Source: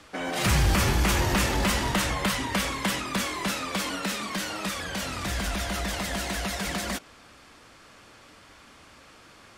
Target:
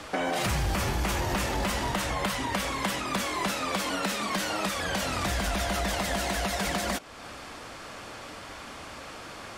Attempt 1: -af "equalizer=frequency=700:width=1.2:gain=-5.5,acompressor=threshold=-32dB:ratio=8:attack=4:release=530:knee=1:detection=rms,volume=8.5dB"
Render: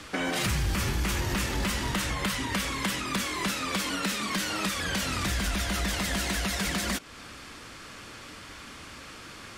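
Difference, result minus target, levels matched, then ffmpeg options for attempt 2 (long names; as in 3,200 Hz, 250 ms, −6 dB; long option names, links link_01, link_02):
500 Hz band −5.0 dB
-af "equalizer=frequency=700:width=1.2:gain=4.5,acompressor=threshold=-32dB:ratio=8:attack=4:release=530:knee=1:detection=rms,volume=8.5dB"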